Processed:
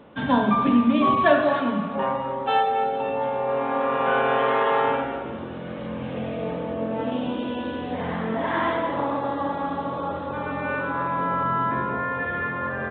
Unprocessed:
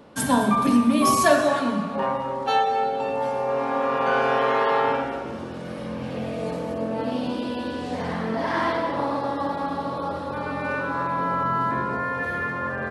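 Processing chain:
mu-law 64 kbit/s 8,000 Hz

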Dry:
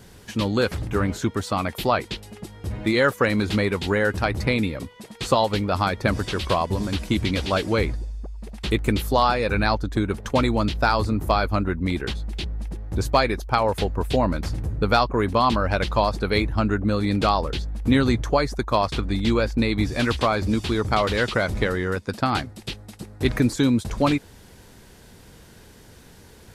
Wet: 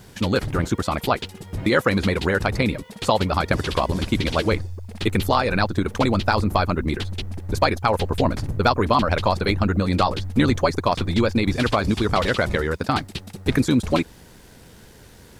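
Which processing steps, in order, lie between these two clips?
time stretch by overlap-add 0.58×, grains 24 ms
bit reduction 11 bits
level +2.5 dB

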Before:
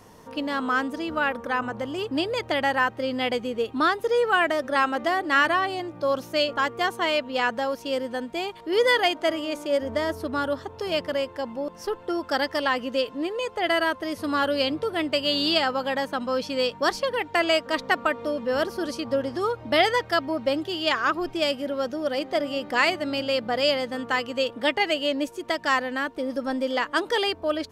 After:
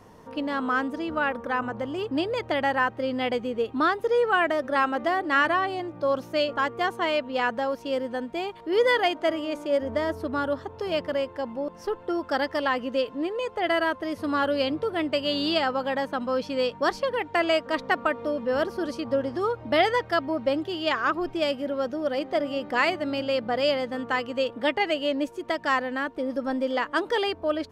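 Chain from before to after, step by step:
high-shelf EQ 3,200 Hz −9 dB

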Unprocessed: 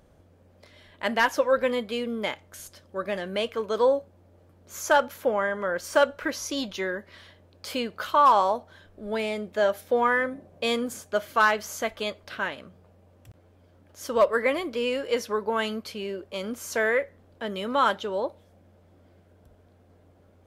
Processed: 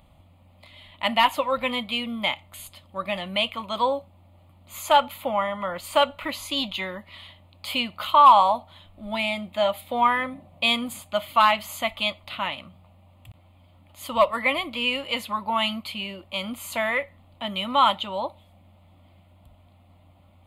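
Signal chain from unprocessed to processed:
parametric band 3,500 Hz +5.5 dB 2.4 octaves
phaser with its sweep stopped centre 1,600 Hz, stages 6
level +4.5 dB

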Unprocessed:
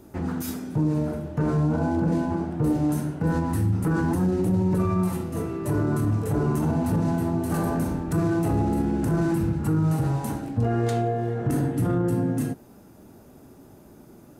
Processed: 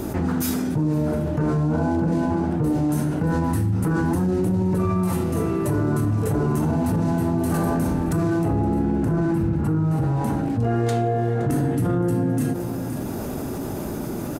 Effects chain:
0:08.43–0:10.50: high-shelf EQ 3,100 Hz −10.5 dB
on a send: single-tap delay 518 ms −22 dB
on the sum: envelope flattener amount 70%

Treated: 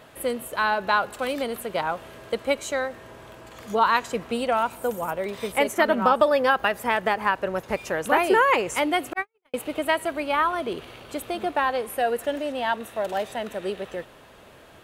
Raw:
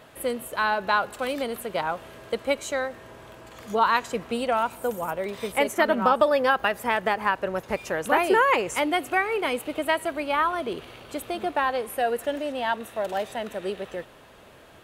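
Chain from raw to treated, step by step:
0:09.13–0:09.54: noise gate −19 dBFS, range −59 dB
level +1 dB

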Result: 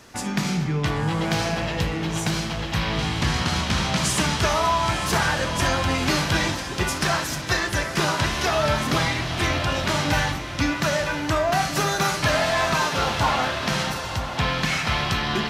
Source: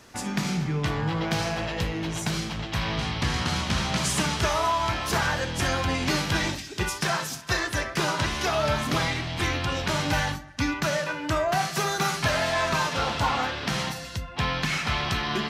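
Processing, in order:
feedback delay with all-pass diffusion 1,006 ms, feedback 40%, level −9.5 dB
level +3 dB

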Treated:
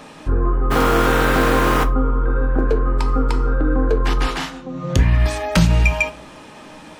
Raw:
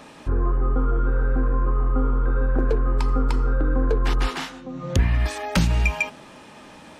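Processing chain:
0:00.70–0:01.83: compressing power law on the bin magnitudes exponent 0.43
rectangular room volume 200 cubic metres, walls furnished, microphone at 0.54 metres
level +4 dB

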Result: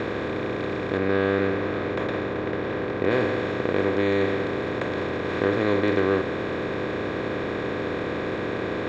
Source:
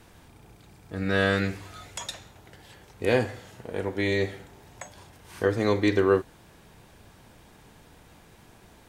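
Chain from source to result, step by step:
compressor on every frequency bin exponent 0.2
0:00.97–0:03.11: high-shelf EQ 5,000 Hz −10 dB
slack as between gear wheels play −33.5 dBFS
high-frequency loss of the air 200 metres
level −4.5 dB

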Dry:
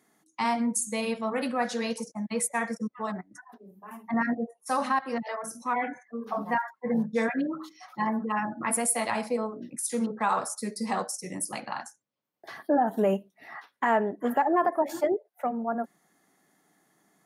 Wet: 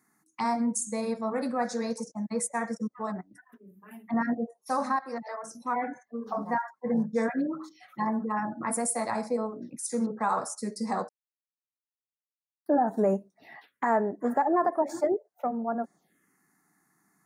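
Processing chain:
0:04.96–0:05.55: low-shelf EQ 370 Hz −9 dB
0:11.09–0:12.66: silence
phaser swept by the level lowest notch 530 Hz, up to 3,000 Hz, full sweep at −32.5 dBFS

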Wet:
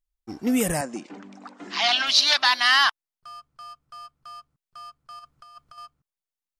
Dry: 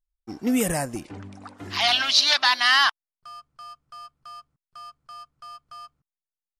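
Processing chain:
0:00.81–0:02.07: elliptic band-pass filter 200–7,500 Hz, stop band 40 dB
0:05.19–0:05.78: compressor whose output falls as the input rises −45 dBFS, ratio −0.5

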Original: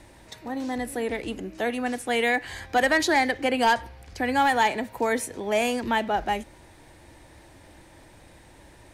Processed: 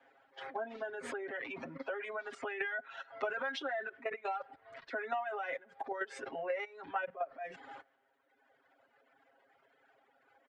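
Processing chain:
band-pass filter 160–4,600 Hz
change of speed 0.852×
transient designer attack −2 dB, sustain +10 dB
tuned comb filter 480 Hz, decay 0.17 s, harmonics all, mix 30%
output level in coarse steps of 13 dB
three-way crossover with the lows and the highs turned down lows −22 dB, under 430 Hz, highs −15 dB, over 2,600 Hz
comb filter 7.4 ms, depth 99%
downward compressor 12 to 1, threshold −43 dBFS, peak gain reduction 22 dB
reverb reduction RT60 1.9 s
multiband upward and downward expander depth 40%
level +8.5 dB

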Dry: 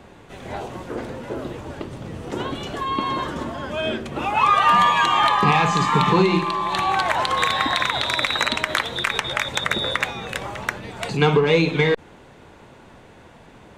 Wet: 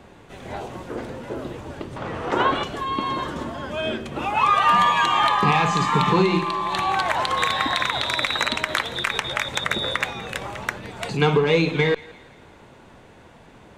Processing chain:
0:01.96–0:02.64: drawn EQ curve 190 Hz 0 dB, 1,200 Hz +15 dB, 12,000 Hz −5 dB
on a send: feedback echo with a high-pass in the loop 170 ms, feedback 50%, high-pass 780 Hz, level −19.5 dB
on the sum: level −1.5 dB

